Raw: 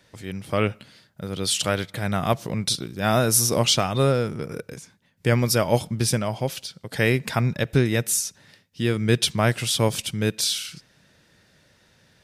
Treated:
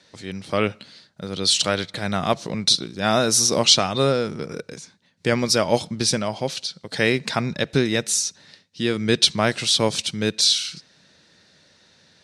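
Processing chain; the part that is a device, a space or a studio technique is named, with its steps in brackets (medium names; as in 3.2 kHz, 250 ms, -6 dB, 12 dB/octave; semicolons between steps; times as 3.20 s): car door speaker (cabinet simulation 93–9100 Hz, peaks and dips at 120 Hz -8 dB, 4.1 kHz +9 dB, 5.8 kHz +4 dB); trim +1.5 dB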